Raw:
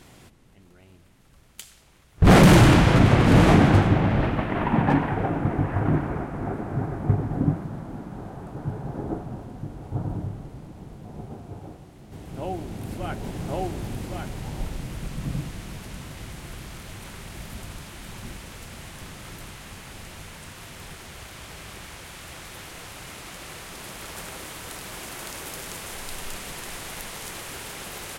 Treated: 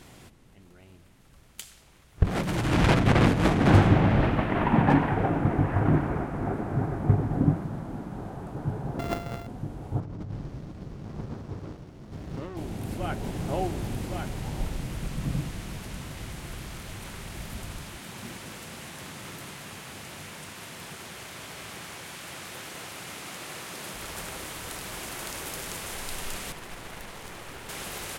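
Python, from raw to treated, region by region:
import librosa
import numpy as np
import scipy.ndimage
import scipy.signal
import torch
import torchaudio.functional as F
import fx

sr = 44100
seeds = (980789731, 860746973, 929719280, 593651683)

y = fx.chain(x, sr, fx.over_compress(threshold_db=-18.0, ratio=-0.5),
    fx.tube_stage(drive_db=12.0, bias=0.55), at=(2.23, 3.7))
y = fx.chain(y, sr, fx.sample_sort(block=64),
    fx.peak_eq(hz=9600.0, db=-8.0, octaves=2.4), at=(8.99, 9.47))
y = fx.chain(y, sr, fx.over_compress(threshold_db=-34.0, ratio=-1.0),
    fx.lowpass_res(hz=5400.0, q=2.7),
    fx.running_max(window=33), at=(10.0, 12.57))
y = fx.chain(y, sr, fx.highpass(hz=130.0, slope=12),
    fx.echo_single(ms=206, db=-7.0), at=(17.98, 23.93))
y = fx.chain(y, sr, fx.halfwave_gain(db=-7.0),
    fx.high_shelf(hz=3500.0, db=-9.5), at=(26.52, 27.69))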